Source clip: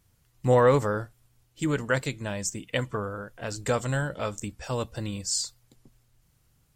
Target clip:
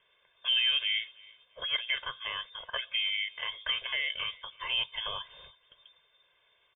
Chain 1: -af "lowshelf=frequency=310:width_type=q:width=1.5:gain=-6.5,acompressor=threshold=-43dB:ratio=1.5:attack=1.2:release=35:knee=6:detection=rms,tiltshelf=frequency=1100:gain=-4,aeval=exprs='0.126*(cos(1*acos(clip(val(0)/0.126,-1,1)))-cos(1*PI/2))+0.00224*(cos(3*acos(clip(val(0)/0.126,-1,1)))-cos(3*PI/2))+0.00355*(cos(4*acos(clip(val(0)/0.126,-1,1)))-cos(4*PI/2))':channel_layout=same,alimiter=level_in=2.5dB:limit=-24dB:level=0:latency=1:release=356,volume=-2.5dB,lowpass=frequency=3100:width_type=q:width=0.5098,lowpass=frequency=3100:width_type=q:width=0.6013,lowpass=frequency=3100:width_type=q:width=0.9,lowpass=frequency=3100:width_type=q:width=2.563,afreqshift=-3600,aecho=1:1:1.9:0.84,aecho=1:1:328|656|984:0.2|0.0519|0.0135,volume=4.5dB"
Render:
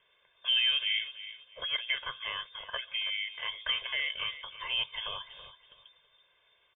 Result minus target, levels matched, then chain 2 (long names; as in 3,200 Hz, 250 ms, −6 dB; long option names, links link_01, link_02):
echo-to-direct +10.5 dB; downward compressor: peak gain reduction +3.5 dB
-af "lowshelf=frequency=310:width_type=q:width=1.5:gain=-6.5,acompressor=threshold=-33dB:ratio=1.5:attack=1.2:release=35:knee=6:detection=rms,tiltshelf=frequency=1100:gain=-4,aeval=exprs='0.126*(cos(1*acos(clip(val(0)/0.126,-1,1)))-cos(1*PI/2))+0.00224*(cos(3*acos(clip(val(0)/0.126,-1,1)))-cos(3*PI/2))+0.00355*(cos(4*acos(clip(val(0)/0.126,-1,1)))-cos(4*PI/2))':channel_layout=same,alimiter=level_in=2.5dB:limit=-24dB:level=0:latency=1:release=356,volume=-2.5dB,lowpass=frequency=3100:width_type=q:width=0.5098,lowpass=frequency=3100:width_type=q:width=0.6013,lowpass=frequency=3100:width_type=q:width=0.9,lowpass=frequency=3100:width_type=q:width=2.563,afreqshift=-3600,aecho=1:1:1.9:0.84,aecho=1:1:328|656:0.0596|0.0155,volume=4.5dB"